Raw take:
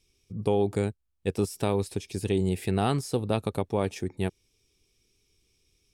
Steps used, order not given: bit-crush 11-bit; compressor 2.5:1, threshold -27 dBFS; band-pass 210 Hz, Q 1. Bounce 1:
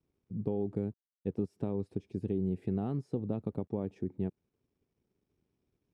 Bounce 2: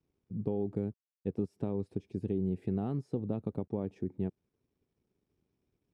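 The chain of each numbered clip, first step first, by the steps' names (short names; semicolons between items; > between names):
compressor > bit-crush > band-pass; bit-crush > compressor > band-pass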